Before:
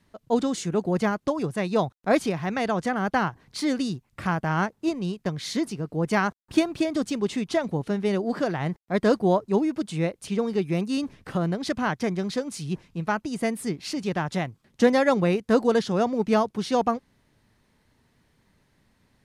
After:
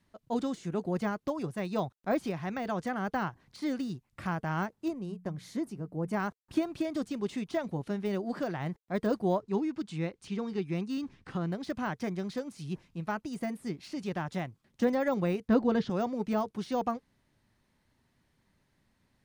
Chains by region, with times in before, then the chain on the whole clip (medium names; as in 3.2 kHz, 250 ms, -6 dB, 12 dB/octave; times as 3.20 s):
4.88–6.20 s: peaking EQ 3.8 kHz -11 dB 2.3 oct + hum notches 60/120/180 Hz
9.41–11.52 s: low-pass 6.8 kHz + peaking EQ 600 Hz -10.5 dB 0.26 oct
15.48–15.90 s: low-pass 3.8 kHz + bass shelf 240 Hz +10 dB
whole clip: band-stop 450 Hz, Q 12; de-esser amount 100%; trim -7 dB